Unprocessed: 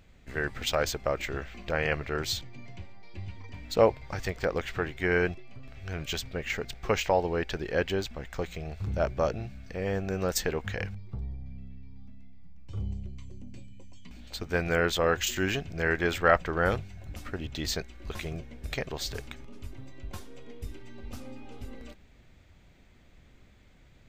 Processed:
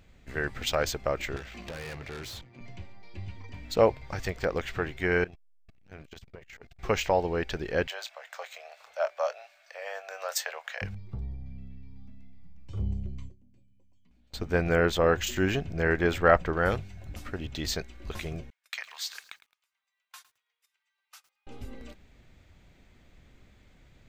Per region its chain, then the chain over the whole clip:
1.36–2.61 tube stage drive 37 dB, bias 0.7 + three-band squash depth 70%
5.24–6.79 compressor 16:1, threshold -36 dBFS + core saturation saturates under 390 Hz
7.87–10.82 elliptic high-pass 580 Hz, stop band 50 dB + doubler 25 ms -13 dB
12.79–16.53 tilt shelf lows +3.5 dB, about 1500 Hz + gate with hold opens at -28 dBFS, closes at -37 dBFS
18.5–21.47 HPF 1100 Hz 24 dB/oct + gate -53 dBFS, range -23 dB + lo-fi delay 0.108 s, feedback 35%, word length 9-bit, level -15 dB
whole clip: dry

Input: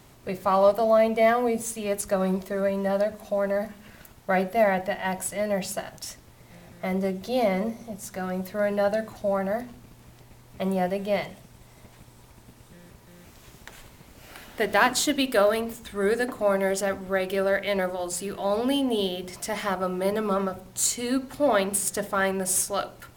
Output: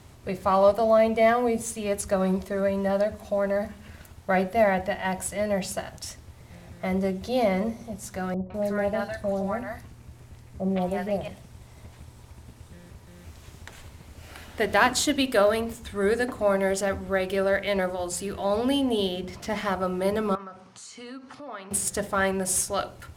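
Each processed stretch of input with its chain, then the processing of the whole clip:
8.34–11.28 three bands offset in time lows, mids, highs 0.16/0.2 s, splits 760/3700 Hz + Doppler distortion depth 0.14 ms
19.14–19.65 median filter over 5 samples + bell 230 Hz +5 dB 0.66 oct
20.35–21.71 compressor 3:1, threshold -38 dBFS + speaker cabinet 240–7800 Hz, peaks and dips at 350 Hz -8 dB, 590 Hz -6 dB, 1200 Hz +6 dB, 3800 Hz -4 dB, 7400 Hz -8 dB
whole clip: LPF 12000 Hz 12 dB/oct; bell 80 Hz +13.5 dB 0.68 oct

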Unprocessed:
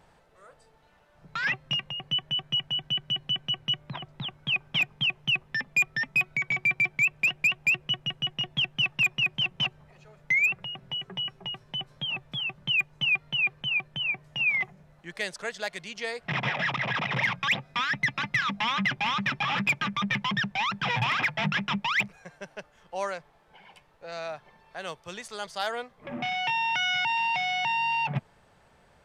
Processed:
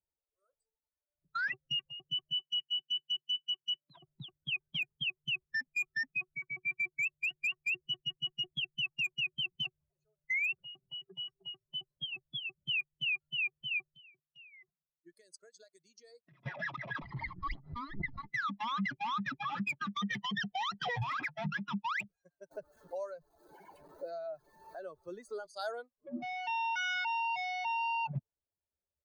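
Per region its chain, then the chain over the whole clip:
2.33–3.97 HPF 210 Hz 6 dB/oct + high shelf 2400 Hz +9 dB + resonator 270 Hz, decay 0.17 s, mix 40%
6.03–6.68 LPF 1400 Hz 6 dB/oct + de-hum 46.74 Hz, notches 2
13.95–16.46 gate -47 dBFS, range -10 dB + notch 800 Hz, Q 5 + compressor, threshold -38 dBFS
17.02–18.31 minimum comb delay 0.97 ms + air absorption 290 m + backwards sustainer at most 77 dB/s
19.91–20.98 high shelf 3800 Hz +9 dB + small resonant body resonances 470/730/1900/3100 Hz, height 13 dB, ringing for 55 ms
22.51–25.46 zero-crossing step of -42.5 dBFS + high shelf 3900 Hz -10 dB + three-band squash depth 100%
whole clip: per-bin expansion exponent 2; high shelf 6500 Hz -5.5 dB; limiter -28 dBFS

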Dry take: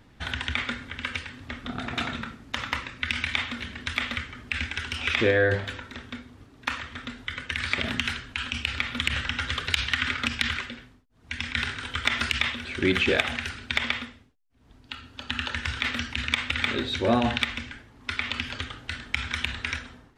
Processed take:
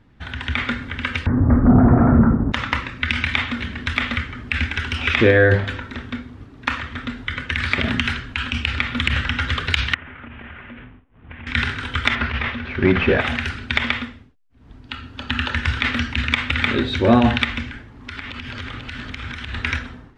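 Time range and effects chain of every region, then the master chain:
1.26–2.52 sample leveller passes 5 + Gaussian blur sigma 8.3 samples
9.94–11.47 CVSD 16 kbps + compressor 10:1, threshold -42 dBFS
12.15–13.21 CVSD 32 kbps + LPF 2600 Hz + notch 310 Hz, Q 5.4
17.69–19.54 compressor 10:1, threshold -35 dBFS + echo 0.491 s -5.5 dB
whole clip: LPF 1600 Hz 6 dB/oct; bell 620 Hz -4.5 dB 1.7 oct; AGC gain up to 10 dB; gain +2 dB

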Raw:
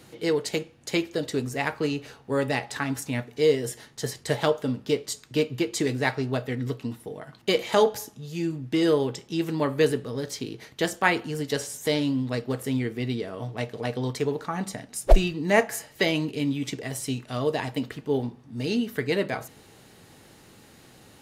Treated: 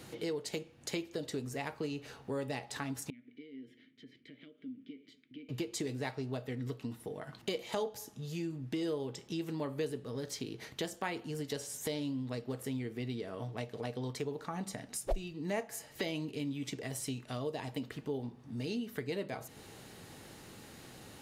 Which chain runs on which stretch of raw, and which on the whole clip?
3.1–5.49 bell 7900 Hz -15 dB 1.5 oct + compressor 4:1, threshold -37 dBFS + vowel filter i
whole clip: dynamic EQ 1600 Hz, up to -5 dB, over -40 dBFS, Q 1.3; compressor 2.5:1, threshold -40 dBFS

